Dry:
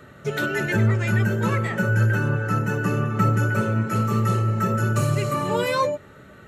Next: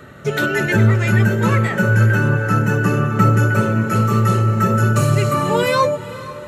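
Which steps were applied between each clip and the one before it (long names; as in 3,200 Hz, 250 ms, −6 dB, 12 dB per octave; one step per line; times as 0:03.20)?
feedback delay with all-pass diffusion 463 ms, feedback 51%, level −16 dB
level +6 dB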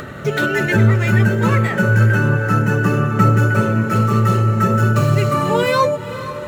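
running median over 5 samples
in parallel at −2 dB: upward compression, threshold −15 dBFS
on the sum: level −4.5 dB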